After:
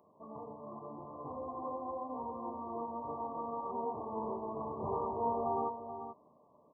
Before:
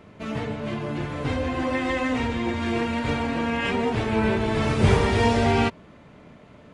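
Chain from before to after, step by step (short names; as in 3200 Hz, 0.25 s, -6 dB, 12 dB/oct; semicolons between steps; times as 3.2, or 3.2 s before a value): brick-wall FIR low-pass 1200 Hz; differentiator; doubler 13 ms -13.5 dB; echo 0.433 s -9.5 dB; mismatched tape noise reduction decoder only; gain +8.5 dB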